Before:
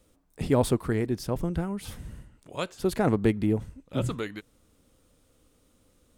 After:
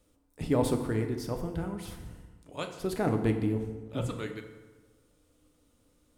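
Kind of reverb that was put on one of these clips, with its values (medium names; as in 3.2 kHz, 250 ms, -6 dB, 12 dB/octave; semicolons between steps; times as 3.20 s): FDN reverb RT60 1.3 s, low-frequency decay 1×, high-frequency decay 0.65×, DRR 4.5 dB; trim -5 dB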